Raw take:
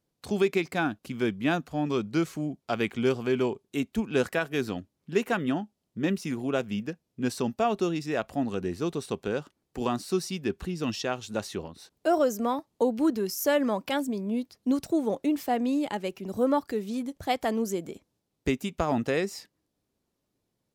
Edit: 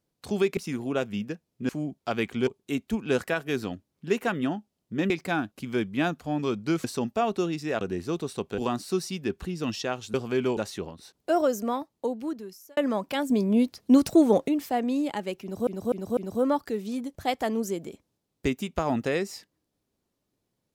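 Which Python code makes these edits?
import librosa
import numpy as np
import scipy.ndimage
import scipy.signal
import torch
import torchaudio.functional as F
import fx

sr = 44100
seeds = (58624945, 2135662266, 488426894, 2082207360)

y = fx.edit(x, sr, fx.swap(start_s=0.57, length_s=1.74, other_s=6.15, other_length_s=1.12),
    fx.move(start_s=3.09, length_s=0.43, to_s=11.34),
    fx.cut(start_s=8.24, length_s=0.3),
    fx.cut(start_s=9.31, length_s=0.47),
    fx.fade_out_span(start_s=12.36, length_s=1.18),
    fx.clip_gain(start_s=14.07, length_s=1.18, db=7.5),
    fx.repeat(start_s=16.19, length_s=0.25, count=4), tone=tone)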